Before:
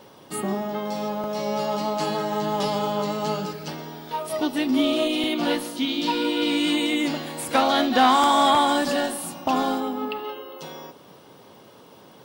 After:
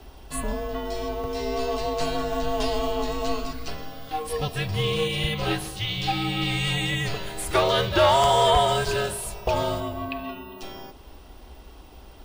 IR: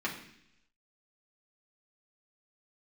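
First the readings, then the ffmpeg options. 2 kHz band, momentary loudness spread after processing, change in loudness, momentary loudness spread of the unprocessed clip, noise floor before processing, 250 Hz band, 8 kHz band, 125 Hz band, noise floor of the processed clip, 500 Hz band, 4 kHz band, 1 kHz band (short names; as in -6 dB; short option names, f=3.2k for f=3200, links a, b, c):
-0.5 dB, 16 LU, -1.5 dB, 15 LU, -49 dBFS, -8.0 dB, 0.0 dB, +8.5 dB, -46 dBFS, +1.0 dB, -0.5 dB, -3.0 dB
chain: -af "lowshelf=f=160:t=q:w=3:g=13.5,afreqshift=-160"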